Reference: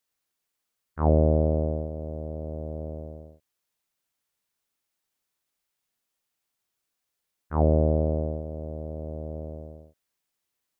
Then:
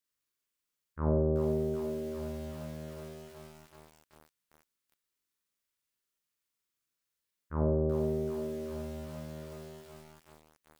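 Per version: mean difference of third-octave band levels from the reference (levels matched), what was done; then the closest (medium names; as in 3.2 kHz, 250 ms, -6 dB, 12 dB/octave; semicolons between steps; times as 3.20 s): 10.5 dB: peaking EQ 740 Hz -12.5 dB 0.37 oct; on a send: flutter echo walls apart 7.5 m, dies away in 0.6 s; on the sum: bit-crushed delay 381 ms, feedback 80%, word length 7-bit, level -8 dB; trim -6.5 dB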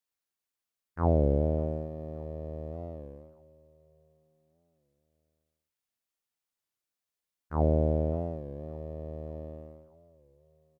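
3.0 dB: in parallel at -4.5 dB: crossover distortion -44 dBFS; on the sum: feedback delay 584 ms, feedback 57%, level -23 dB; warped record 33 1/3 rpm, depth 160 cents; trim -8 dB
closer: second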